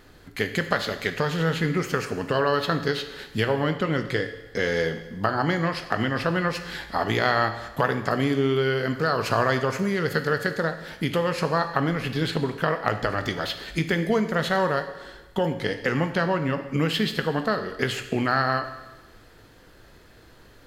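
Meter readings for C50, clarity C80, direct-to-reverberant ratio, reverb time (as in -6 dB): 10.0 dB, 12.0 dB, 7.5 dB, 1.1 s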